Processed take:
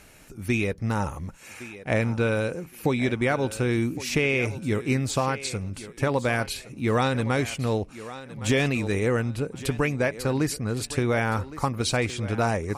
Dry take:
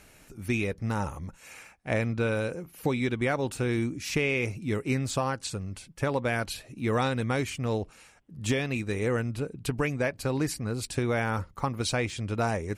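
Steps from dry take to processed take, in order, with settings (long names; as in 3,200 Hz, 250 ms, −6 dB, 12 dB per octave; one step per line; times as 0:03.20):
feedback echo with a high-pass in the loop 1,114 ms, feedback 26%, high-pass 220 Hz, level −14 dB
0:08.36–0:09.10: level that may fall only so fast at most 28 dB per second
level +3.5 dB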